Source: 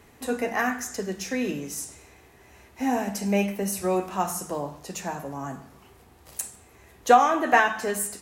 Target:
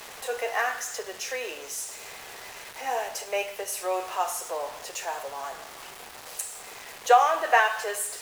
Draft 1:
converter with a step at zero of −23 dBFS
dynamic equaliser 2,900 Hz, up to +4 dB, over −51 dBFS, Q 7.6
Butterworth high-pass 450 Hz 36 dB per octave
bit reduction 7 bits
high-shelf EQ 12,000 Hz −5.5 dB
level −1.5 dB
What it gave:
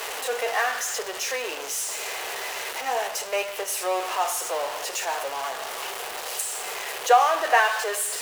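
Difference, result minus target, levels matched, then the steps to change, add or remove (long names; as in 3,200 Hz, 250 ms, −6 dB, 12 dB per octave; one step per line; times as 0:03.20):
converter with a step at zero: distortion +9 dB
change: converter with a step at zero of −34.5 dBFS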